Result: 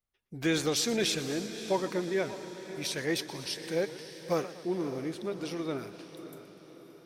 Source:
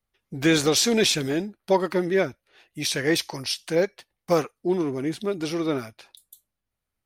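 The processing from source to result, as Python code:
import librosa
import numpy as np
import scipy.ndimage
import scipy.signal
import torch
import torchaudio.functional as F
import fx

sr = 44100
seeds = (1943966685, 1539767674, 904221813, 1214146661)

y = fx.echo_diffused(x, sr, ms=576, feedback_pct=52, wet_db=-12.0)
y = fx.echo_warbled(y, sr, ms=121, feedback_pct=57, rate_hz=2.8, cents=146, wet_db=-16)
y = y * 10.0 ** (-8.5 / 20.0)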